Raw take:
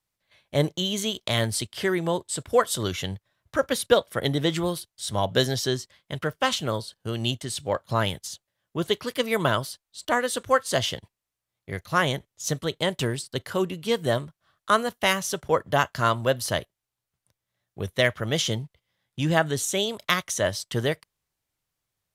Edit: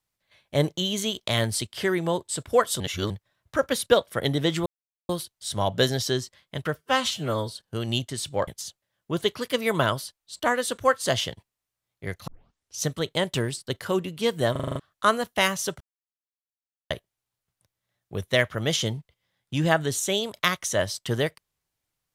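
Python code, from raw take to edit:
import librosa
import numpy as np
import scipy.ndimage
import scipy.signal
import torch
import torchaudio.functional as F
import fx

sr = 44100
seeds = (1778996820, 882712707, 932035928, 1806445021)

y = fx.edit(x, sr, fx.reverse_span(start_s=2.8, length_s=0.3),
    fx.insert_silence(at_s=4.66, length_s=0.43),
    fx.stretch_span(start_s=6.32, length_s=0.49, factor=1.5),
    fx.cut(start_s=7.8, length_s=0.33),
    fx.tape_start(start_s=11.93, length_s=0.54),
    fx.stutter_over(start_s=14.17, slice_s=0.04, count=7),
    fx.silence(start_s=15.46, length_s=1.1), tone=tone)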